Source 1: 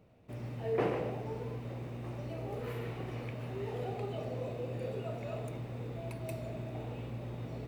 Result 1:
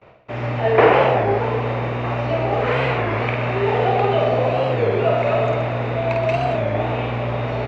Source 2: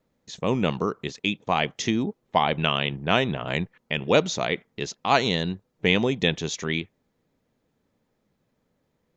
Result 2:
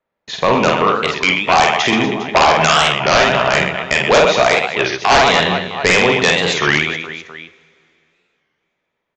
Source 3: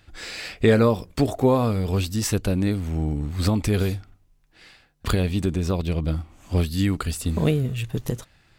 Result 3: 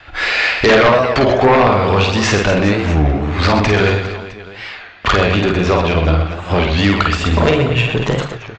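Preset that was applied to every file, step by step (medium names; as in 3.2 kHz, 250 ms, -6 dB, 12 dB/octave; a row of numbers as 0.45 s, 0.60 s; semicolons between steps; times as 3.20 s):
gate with hold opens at -52 dBFS; three-band isolator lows -15 dB, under 560 Hz, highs -19 dB, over 3.2 kHz; in parallel at +1 dB: compression, threshold -35 dBFS; on the sum: reverse bouncing-ball echo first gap 50 ms, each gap 1.5×, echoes 5; sine folder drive 11 dB, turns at -6 dBFS; two-slope reverb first 0.44 s, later 2.9 s, from -17 dB, DRR 12.5 dB; resampled via 16 kHz; warped record 33 1/3 rpm, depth 160 cents; peak normalisation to -2 dBFS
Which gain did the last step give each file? +3.0 dB, 0.0 dB, +0.5 dB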